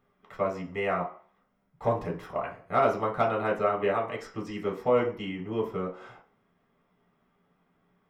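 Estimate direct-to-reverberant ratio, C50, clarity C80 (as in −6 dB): −2.5 dB, 10.0 dB, 14.0 dB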